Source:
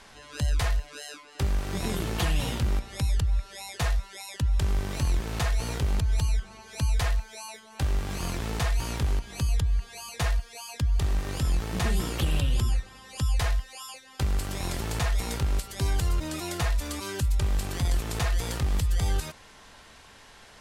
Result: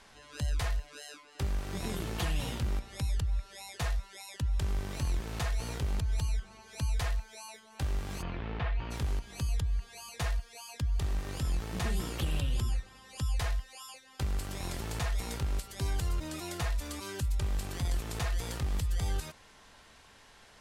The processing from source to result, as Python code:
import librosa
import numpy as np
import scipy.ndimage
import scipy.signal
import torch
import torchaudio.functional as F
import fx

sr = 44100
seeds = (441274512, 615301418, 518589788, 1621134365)

y = fx.lowpass(x, sr, hz=3100.0, slope=24, at=(8.21, 8.9), fade=0.02)
y = y * librosa.db_to_amplitude(-6.0)